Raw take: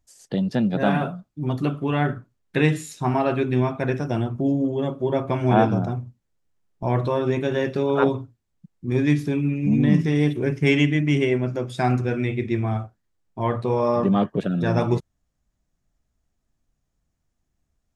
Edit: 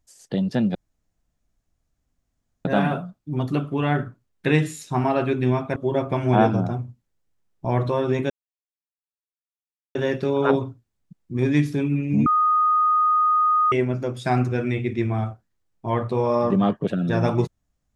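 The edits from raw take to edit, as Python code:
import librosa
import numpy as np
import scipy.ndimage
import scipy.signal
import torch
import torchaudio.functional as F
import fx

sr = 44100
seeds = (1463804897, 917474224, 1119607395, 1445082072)

y = fx.edit(x, sr, fx.insert_room_tone(at_s=0.75, length_s=1.9),
    fx.cut(start_s=3.86, length_s=1.08),
    fx.insert_silence(at_s=7.48, length_s=1.65),
    fx.bleep(start_s=9.79, length_s=1.46, hz=1240.0, db=-15.5), tone=tone)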